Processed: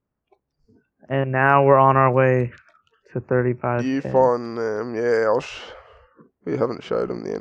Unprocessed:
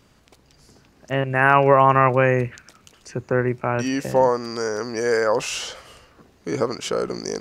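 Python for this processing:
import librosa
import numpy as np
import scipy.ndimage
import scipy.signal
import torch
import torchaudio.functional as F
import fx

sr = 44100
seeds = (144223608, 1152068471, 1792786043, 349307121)

y = fx.noise_reduce_blind(x, sr, reduce_db=24)
y = fx.env_lowpass(y, sr, base_hz=1800.0, full_db=-12.0)
y = fx.high_shelf(y, sr, hz=2200.0, db=-9.5)
y = F.gain(torch.from_numpy(y), 1.5).numpy()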